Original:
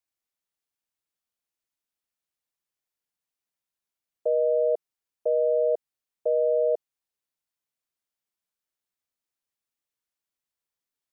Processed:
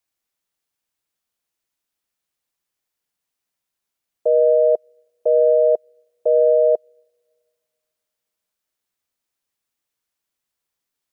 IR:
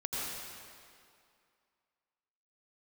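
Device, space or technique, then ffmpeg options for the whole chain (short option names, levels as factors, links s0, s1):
keyed gated reverb: -filter_complex "[0:a]asplit=3[s0][s1][s2];[1:a]atrim=start_sample=2205[s3];[s1][s3]afir=irnorm=-1:irlink=0[s4];[s2]apad=whole_len=490497[s5];[s4][s5]sidechaingate=range=0.0141:threshold=0.1:ratio=16:detection=peak,volume=0.562[s6];[s0][s6]amix=inputs=2:normalize=0,volume=2.24"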